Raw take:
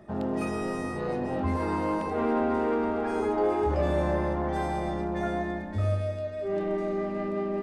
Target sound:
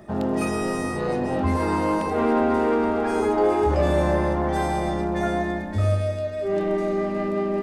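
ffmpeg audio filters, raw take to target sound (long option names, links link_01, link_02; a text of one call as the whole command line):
ffmpeg -i in.wav -af "highshelf=frequency=5100:gain=7.5,volume=5.5dB" out.wav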